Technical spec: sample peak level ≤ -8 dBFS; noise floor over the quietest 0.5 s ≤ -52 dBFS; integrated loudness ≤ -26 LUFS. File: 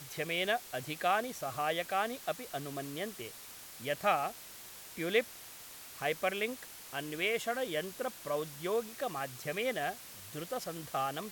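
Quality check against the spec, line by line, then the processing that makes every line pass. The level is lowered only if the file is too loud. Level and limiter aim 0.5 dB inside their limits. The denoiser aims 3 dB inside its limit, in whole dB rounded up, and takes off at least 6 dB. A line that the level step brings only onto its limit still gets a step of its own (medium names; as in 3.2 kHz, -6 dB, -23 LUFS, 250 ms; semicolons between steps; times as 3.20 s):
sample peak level -16.0 dBFS: pass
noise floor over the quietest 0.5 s -50 dBFS: fail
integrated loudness -35.5 LUFS: pass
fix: noise reduction 6 dB, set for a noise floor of -50 dBFS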